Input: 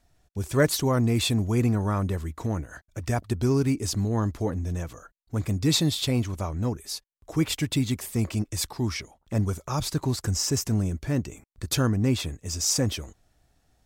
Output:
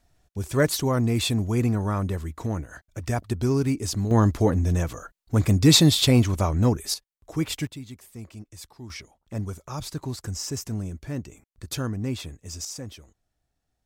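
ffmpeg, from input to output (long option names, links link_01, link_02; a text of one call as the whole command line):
ffmpeg -i in.wav -af "asetnsamples=nb_out_samples=441:pad=0,asendcmd='4.11 volume volume 7dB;6.94 volume volume -2dB;7.67 volume volume -14dB;8.9 volume volume -5.5dB;12.65 volume volume -12.5dB',volume=0dB" out.wav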